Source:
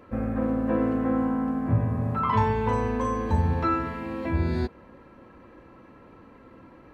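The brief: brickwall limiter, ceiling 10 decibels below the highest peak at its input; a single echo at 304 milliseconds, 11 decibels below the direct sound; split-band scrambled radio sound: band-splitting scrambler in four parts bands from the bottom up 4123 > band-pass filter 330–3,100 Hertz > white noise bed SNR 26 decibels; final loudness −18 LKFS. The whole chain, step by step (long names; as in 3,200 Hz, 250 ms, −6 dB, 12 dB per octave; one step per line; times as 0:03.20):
brickwall limiter −22 dBFS
single-tap delay 304 ms −11 dB
band-splitting scrambler in four parts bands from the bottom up 4123
band-pass filter 330–3,100 Hz
white noise bed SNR 26 dB
level +10.5 dB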